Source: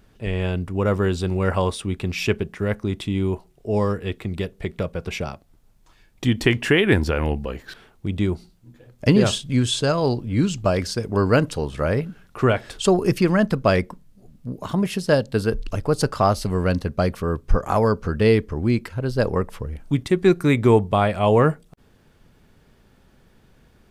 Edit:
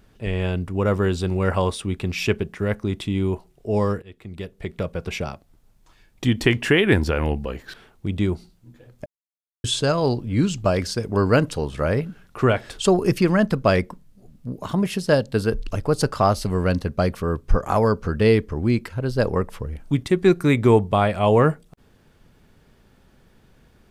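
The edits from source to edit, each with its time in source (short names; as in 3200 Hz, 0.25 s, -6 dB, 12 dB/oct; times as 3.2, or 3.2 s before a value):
4.02–4.92 fade in, from -22 dB
9.06–9.64 mute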